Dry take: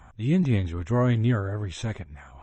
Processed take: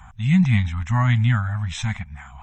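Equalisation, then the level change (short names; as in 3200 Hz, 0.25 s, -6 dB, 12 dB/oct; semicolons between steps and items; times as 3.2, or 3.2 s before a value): dynamic EQ 2100 Hz, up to +6 dB, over -53 dBFS, Q 3.4; Chebyshev band-stop 210–770 Hz, order 3; +6.5 dB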